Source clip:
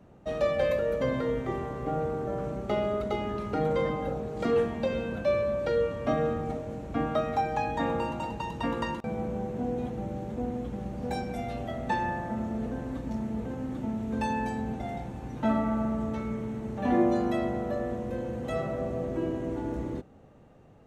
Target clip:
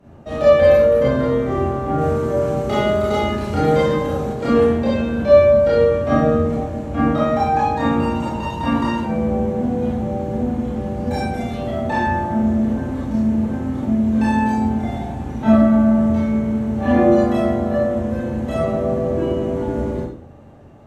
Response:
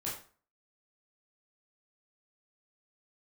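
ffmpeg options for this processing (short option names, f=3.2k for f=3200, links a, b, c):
-filter_complex "[0:a]asettb=1/sr,asplit=3[a][b][c];[a]atrim=end=1.984[d];[b]atrim=start=1.98:end=4.3,asetpts=PTS-STARTPTS,afade=t=in:d=0.004:c=qsin,afade=t=out:st=2.316:d=0.004:c=qsin,highshelf=f=3k:g=10[e];[c]atrim=start=4.296[f];[d][e]acrossfade=d=0.004:c1=hsin:c2=qsin[g];[g][f]acrossfade=d=0.004:c1=qsin:c2=hsin[h];[1:a]atrim=start_sample=2205,asetrate=30870,aresample=44100[i];[h][i]afir=irnorm=-1:irlink=0,volume=5.5dB"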